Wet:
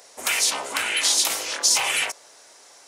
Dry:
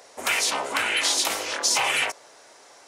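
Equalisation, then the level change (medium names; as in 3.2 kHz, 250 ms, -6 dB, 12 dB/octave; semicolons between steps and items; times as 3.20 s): treble shelf 3.4 kHz +9.5 dB; -3.5 dB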